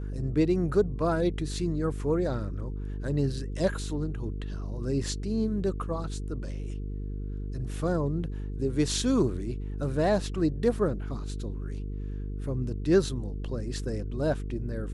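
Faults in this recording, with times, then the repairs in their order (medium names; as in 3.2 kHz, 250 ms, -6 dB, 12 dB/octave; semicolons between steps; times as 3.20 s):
buzz 50 Hz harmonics 9 -34 dBFS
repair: de-hum 50 Hz, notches 9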